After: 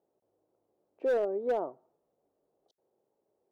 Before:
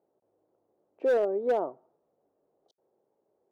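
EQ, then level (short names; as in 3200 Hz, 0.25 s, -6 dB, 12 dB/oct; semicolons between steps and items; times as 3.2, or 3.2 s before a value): low shelf 63 Hz +7.5 dB; -3.5 dB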